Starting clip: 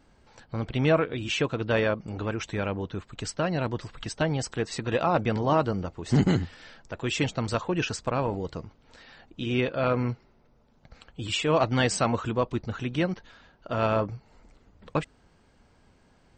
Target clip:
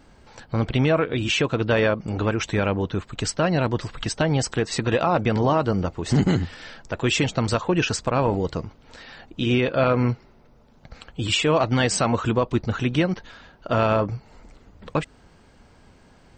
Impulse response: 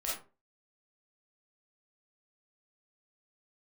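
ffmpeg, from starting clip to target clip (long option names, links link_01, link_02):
-af "alimiter=limit=-18.5dB:level=0:latency=1:release=163,volume=8dB"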